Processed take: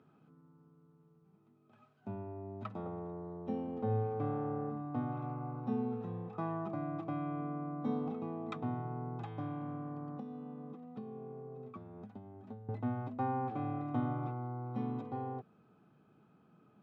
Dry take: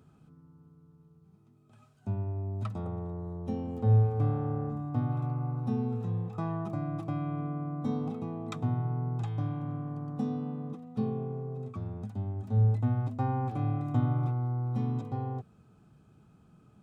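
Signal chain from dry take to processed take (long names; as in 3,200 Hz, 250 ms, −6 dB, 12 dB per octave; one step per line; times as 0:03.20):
0:10.17–0:12.69: downward compressor 8 to 1, threshold −38 dBFS, peak gain reduction 17 dB
band-pass filter 220–2,800 Hz
level −1 dB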